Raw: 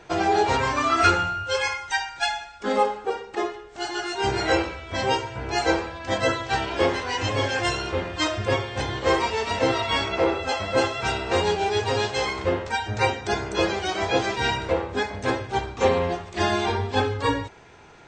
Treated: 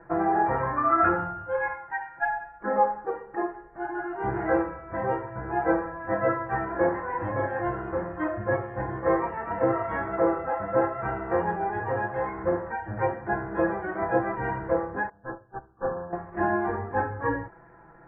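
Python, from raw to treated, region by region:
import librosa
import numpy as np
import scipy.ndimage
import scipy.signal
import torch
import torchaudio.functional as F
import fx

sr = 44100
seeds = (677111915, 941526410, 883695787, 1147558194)

y = fx.chain(x, sr, fx.highpass(hz=120.0, slope=6),
    fx.bass_treble(bass_db=-1, treble_db=-6),
    fx.doubler(ms=44.0, db=-13.5), at=(1.78, 2.22))
y = fx.chain(y, sr, fx.tube_stage(drive_db=20.0, bias=0.5),
    fx.brickwall_lowpass(high_hz=1800.0),
    fx.upward_expand(threshold_db=-35.0, expansion=2.5), at=(15.09, 16.13))
y = scipy.signal.sosfilt(scipy.signal.cheby1(5, 1.0, 1800.0, 'lowpass', fs=sr, output='sos'), y)
y = fx.notch(y, sr, hz=440.0, q=12.0)
y = y + 0.62 * np.pad(y, (int(6.0 * sr / 1000.0), 0))[:len(y)]
y = y * librosa.db_to_amplitude(-3.0)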